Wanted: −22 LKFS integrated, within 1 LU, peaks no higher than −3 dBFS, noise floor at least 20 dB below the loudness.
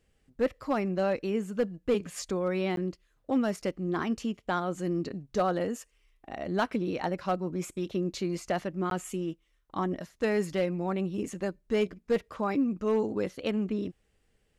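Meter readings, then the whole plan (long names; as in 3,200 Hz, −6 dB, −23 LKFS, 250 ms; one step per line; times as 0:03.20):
share of clipped samples 0.3%; peaks flattened at −19.0 dBFS; number of dropouts 2; longest dropout 12 ms; integrated loudness −31.5 LKFS; sample peak −19.0 dBFS; target loudness −22.0 LKFS
→ clipped peaks rebuilt −19 dBFS
repair the gap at 0:02.76/0:08.90, 12 ms
level +9.5 dB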